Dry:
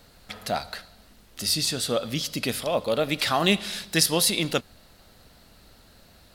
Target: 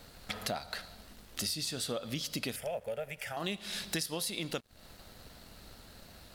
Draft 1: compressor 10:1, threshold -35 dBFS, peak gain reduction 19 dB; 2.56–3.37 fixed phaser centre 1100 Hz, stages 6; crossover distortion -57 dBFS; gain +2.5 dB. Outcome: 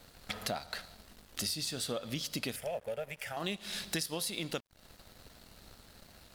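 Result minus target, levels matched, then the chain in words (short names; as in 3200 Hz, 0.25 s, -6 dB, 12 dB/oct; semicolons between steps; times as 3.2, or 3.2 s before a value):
crossover distortion: distortion +7 dB
compressor 10:1, threshold -35 dBFS, peak gain reduction 19 dB; 2.56–3.37 fixed phaser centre 1100 Hz, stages 6; crossover distortion -65 dBFS; gain +2.5 dB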